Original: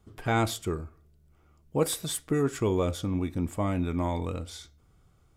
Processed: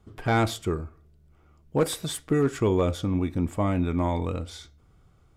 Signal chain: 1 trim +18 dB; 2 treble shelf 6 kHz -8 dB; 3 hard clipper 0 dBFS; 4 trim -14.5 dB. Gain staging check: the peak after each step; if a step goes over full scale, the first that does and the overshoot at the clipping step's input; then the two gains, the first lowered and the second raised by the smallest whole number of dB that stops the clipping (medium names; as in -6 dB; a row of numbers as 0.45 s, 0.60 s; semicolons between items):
+5.0 dBFS, +5.0 dBFS, 0.0 dBFS, -14.5 dBFS; step 1, 5.0 dB; step 1 +13 dB, step 4 -9.5 dB